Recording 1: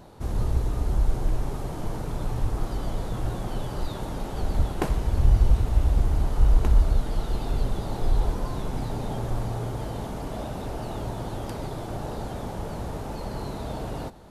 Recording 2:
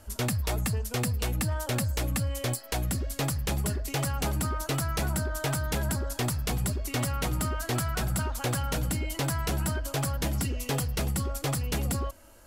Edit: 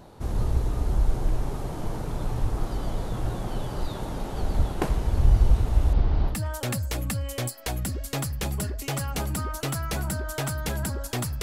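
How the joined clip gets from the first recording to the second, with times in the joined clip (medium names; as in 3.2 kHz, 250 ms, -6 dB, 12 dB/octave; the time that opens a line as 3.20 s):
recording 1
5.93–6.39 s: steep low-pass 5 kHz 36 dB/octave
6.33 s: go over to recording 2 from 1.39 s, crossfade 0.12 s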